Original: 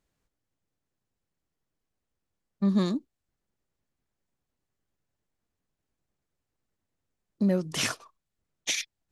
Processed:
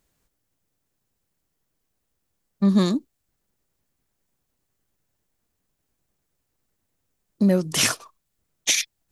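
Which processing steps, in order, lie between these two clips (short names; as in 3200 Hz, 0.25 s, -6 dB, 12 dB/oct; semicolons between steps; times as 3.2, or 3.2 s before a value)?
high shelf 7700 Hz +10 dB; gain +6 dB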